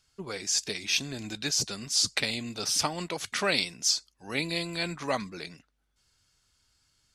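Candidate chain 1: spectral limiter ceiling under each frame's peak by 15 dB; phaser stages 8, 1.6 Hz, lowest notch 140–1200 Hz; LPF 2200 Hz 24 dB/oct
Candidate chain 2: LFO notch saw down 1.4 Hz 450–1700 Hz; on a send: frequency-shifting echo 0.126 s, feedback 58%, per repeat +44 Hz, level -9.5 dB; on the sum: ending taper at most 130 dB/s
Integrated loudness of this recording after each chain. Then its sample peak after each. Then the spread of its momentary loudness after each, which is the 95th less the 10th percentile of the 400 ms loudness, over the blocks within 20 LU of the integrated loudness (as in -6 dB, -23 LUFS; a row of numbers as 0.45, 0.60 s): -39.0, -29.5 LUFS; -18.0, -9.5 dBFS; 11, 9 LU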